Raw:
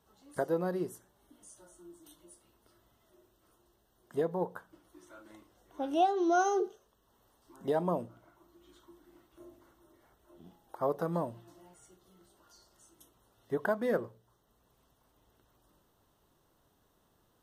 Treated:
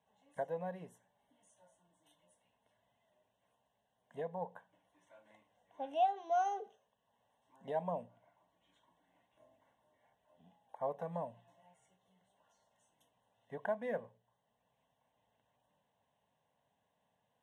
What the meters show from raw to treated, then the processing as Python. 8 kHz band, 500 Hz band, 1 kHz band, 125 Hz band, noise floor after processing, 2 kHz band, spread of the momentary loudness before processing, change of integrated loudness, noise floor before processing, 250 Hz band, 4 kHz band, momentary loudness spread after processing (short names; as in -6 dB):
under -15 dB, -8.0 dB, -4.0 dB, -9.5 dB, -82 dBFS, -10.0 dB, 13 LU, -6.5 dB, -72 dBFS, -15.0 dB, -8.5 dB, 17 LU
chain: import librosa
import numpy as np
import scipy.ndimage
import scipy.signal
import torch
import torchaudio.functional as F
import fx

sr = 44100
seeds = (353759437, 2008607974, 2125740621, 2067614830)

y = fx.bandpass_edges(x, sr, low_hz=170.0, high_hz=5600.0)
y = fx.fixed_phaser(y, sr, hz=1300.0, stages=6)
y = y * 10.0 ** (-3.5 / 20.0)